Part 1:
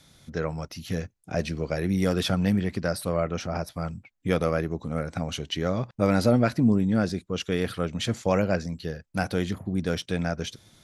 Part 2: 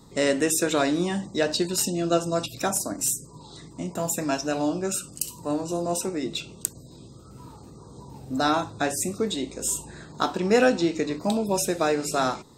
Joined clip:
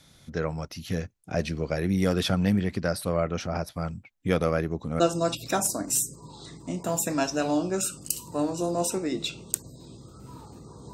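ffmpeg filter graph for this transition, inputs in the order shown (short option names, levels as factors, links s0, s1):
-filter_complex "[0:a]apad=whole_dur=10.93,atrim=end=10.93,atrim=end=5.002[s0];[1:a]atrim=start=2.108:end=8.04[s1];[s0][s1]acrossfade=d=0.004:c1=hsin:c2=hsin"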